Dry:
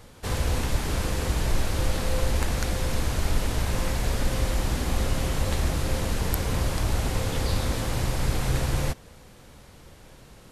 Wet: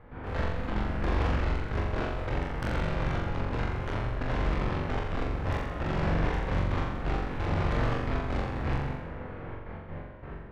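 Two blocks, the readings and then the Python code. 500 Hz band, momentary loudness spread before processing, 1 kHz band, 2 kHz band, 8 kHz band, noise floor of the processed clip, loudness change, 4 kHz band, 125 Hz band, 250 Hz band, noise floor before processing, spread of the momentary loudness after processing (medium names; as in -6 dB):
-2.0 dB, 1 LU, 0.0 dB, -2.0 dB, under -20 dB, -42 dBFS, -4.0 dB, -11.0 dB, -3.5 dB, -1.5 dB, -50 dBFS, 12 LU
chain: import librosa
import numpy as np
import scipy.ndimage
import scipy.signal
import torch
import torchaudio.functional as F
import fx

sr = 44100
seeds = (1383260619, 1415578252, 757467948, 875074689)

y = scipy.signal.sosfilt(scipy.signal.butter(4, 2000.0, 'lowpass', fs=sr, output='sos'), x)
y = np.clip(y, -10.0 ** (-29.5 / 20.0), 10.0 ** (-29.5 / 20.0))
y = fx.step_gate(y, sr, bpm=132, pattern='.x.x..x..xxxxx', floor_db=-12.0, edge_ms=4.5)
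y = 10.0 ** (-37.5 / 20.0) * np.tanh(y / 10.0 ** (-37.5 / 20.0))
y = fx.doubler(y, sr, ms=24.0, db=-5.0)
y = fx.room_flutter(y, sr, wall_m=7.4, rt60_s=0.89)
y = y * 10.0 ** (8.0 / 20.0)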